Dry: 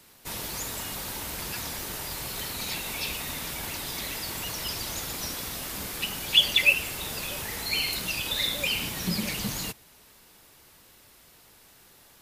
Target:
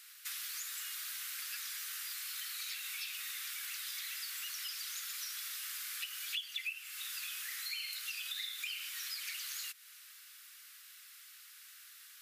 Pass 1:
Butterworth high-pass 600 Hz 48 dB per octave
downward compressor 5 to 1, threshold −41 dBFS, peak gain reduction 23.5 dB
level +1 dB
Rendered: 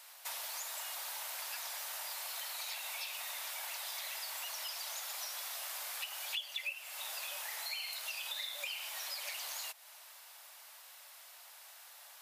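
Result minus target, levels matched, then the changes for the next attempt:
1,000 Hz band +9.5 dB
change: Butterworth high-pass 1,300 Hz 48 dB per octave

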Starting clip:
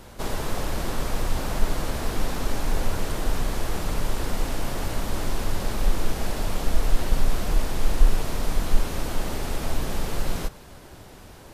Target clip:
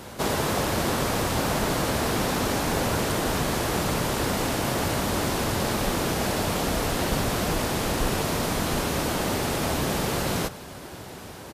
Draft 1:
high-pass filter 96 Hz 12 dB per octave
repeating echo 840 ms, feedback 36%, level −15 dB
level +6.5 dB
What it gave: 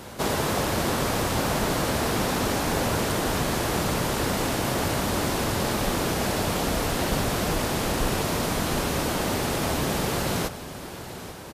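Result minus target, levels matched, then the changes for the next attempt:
echo-to-direct +9.5 dB
change: repeating echo 840 ms, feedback 36%, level −24.5 dB

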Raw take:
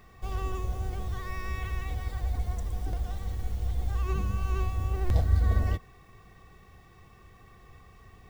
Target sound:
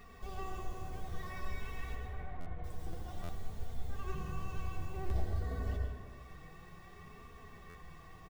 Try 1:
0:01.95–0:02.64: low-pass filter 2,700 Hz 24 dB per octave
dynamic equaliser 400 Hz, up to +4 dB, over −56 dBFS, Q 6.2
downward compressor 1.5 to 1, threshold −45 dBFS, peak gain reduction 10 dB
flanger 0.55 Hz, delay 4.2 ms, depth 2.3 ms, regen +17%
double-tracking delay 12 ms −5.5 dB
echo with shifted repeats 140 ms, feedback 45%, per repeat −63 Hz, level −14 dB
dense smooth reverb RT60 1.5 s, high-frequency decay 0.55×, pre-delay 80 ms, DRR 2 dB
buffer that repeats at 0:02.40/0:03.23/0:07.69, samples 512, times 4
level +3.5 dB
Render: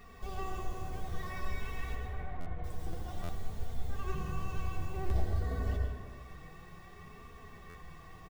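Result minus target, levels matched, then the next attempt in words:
downward compressor: peak gain reduction −3.5 dB
0:01.95–0:02.64: low-pass filter 2,700 Hz 24 dB per octave
dynamic equaliser 400 Hz, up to +4 dB, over −56 dBFS, Q 6.2
downward compressor 1.5 to 1, threshold −55 dBFS, peak gain reduction 13.5 dB
flanger 0.55 Hz, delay 4.2 ms, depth 2.3 ms, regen +17%
double-tracking delay 12 ms −5.5 dB
echo with shifted repeats 140 ms, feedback 45%, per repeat −63 Hz, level −14 dB
dense smooth reverb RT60 1.5 s, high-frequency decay 0.55×, pre-delay 80 ms, DRR 2 dB
buffer that repeats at 0:02.40/0:03.23/0:07.69, samples 512, times 4
level +3.5 dB

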